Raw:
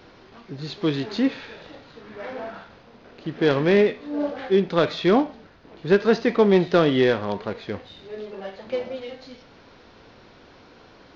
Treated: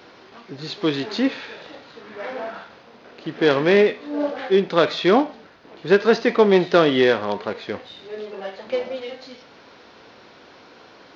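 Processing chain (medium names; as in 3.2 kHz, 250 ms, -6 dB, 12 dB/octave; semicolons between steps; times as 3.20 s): high-pass 330 Hz 6 dB/octave; trim +4.5 dB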